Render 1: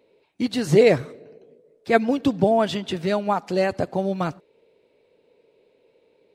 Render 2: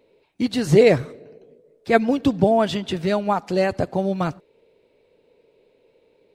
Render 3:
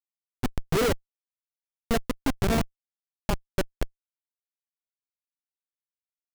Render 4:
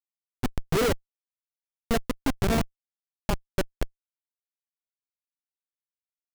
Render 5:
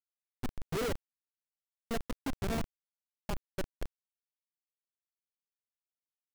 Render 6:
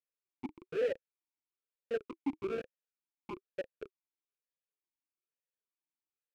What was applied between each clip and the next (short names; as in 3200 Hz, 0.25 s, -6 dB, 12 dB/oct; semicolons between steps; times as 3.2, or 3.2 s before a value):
low shelf 68 Hz +11.5 dB; gain +1 dB
Schmitt trigger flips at -14 dBFS
nothing audible
companded quantiser 2-bit; gain -7.5 dB
vowel sweep e-u 1.1 Hz; gain +8.5 dB